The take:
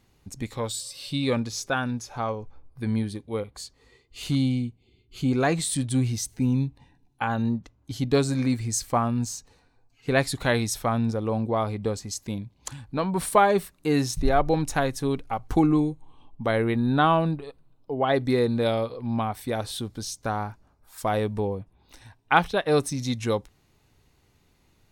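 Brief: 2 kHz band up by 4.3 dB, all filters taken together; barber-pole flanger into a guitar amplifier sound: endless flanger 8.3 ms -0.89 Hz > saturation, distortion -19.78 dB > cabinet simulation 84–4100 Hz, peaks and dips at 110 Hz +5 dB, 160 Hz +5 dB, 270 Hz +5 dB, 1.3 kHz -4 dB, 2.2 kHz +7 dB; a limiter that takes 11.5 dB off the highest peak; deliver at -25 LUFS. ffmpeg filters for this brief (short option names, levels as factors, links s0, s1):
-filter_complex "[0:a]equalizer=f=2000:t=o:g=3.5,alimiter=limit=0.211:level=0:latency=1,asplit=2[s0][s1];[s1]adelay=8.3,afreqshift=-0.89[s2];[s0][s2]amix=inputs=2:normalize=1,asoftclip=threshold=0.119,highpass=84,equalizer=f=110:t=q:w=4:g=5,equalizer=f=160:t=q:w=4:g=5,equalizer=f=270:t=q:w=4:g=5,equalizer=f=1300:t=q:w=4:g=-4,equalizer=f=2200:t=q:w=4:g=7,lowpass=f=4100:w=0.5412,lowpass=f=4100:w=1.3066,volume=1.58"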